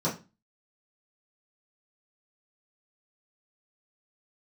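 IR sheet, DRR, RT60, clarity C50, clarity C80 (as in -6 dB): -9.5 dB, 0.30 s, 10.5 dB, 17.5 dB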